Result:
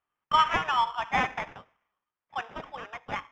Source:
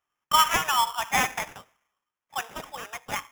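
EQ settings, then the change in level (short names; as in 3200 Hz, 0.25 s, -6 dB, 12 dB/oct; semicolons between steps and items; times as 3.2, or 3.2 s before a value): air absorption 220 m; high shelf 5600 Hz -6.5 dB; 0.0 dB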